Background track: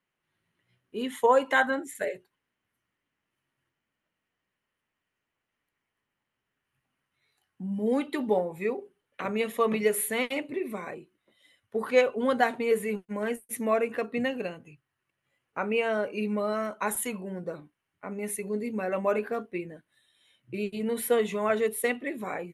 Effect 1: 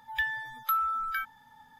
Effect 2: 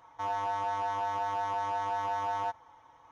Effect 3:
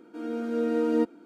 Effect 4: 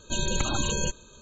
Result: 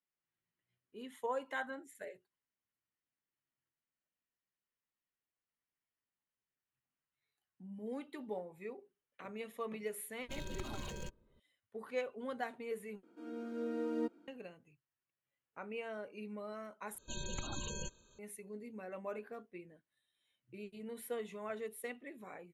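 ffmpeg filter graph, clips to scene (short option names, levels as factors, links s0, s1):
-filter_complex "[4:a]asplit=2[s0][s1];[0:a]volume=0.15[s2];[s0]adynamicsmooth=sensitivity=7.5:basefreq=620[s3];[s2]asplit=3[s4][s5][s6];[s4]atrim=end=13.034[s7];[3:a]atrim=end=1.25,asetpts=PTS-STARTPTS,volume=0.237[s8];[s5]atrim=start=14.276:end=16.984[s9];[s1]atrim=end=1.21,asetpts=PTS-STARTPTS,volume=0.178[s10];[s6]atrim=start=18.186[s11];[s3]atrim=end=1.21,asetpts=PTS-STARTPTS,volume=0.158,afade=t=in:d=0.004:c=hsin,afade=t=out:st=1.206:d=0.004:c=hsin,adelay=10190[s12];[s7][s8]acrossfade=d=0.004:c1=hsin:c2=hsin[s13];[s13][s9]acrossfade=d=0.004:c1=hsin:c2=hsin[s14];[s14][s10]acrossfade=d=0.004:c1=hsin:c2=hsin[s15];[s15][s11]acrossfade=d=0.004:c1=hsin:c2=hsin[s16];[s16][s12]amix=inputs=2:normalize=0"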